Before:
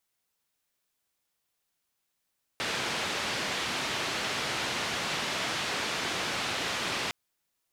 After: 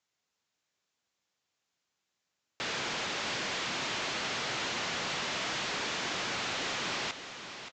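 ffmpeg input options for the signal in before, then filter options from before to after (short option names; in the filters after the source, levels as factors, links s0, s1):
-f lavfi -i "anoisesrc=c=white:d=4.51:r=44100:seed=1,highpass=f=97,lowpass=f=3700,volume=-19.7dB"
-af "highpass=81,aresample=16000,asoftclip=type=tanh:threshold=0.0316,aresample=44100,aecho=1:1:575|1150|1725|2300:0.316|0.108|0.0366|0.0124"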